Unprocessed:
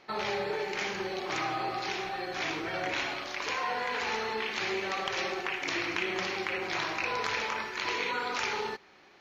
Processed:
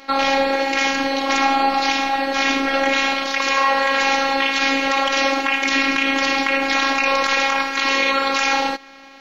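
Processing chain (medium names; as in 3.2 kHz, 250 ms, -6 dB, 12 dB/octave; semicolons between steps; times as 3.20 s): robot voice 272 Hz; loudness maximiser +18.5 dB; trim -1 dB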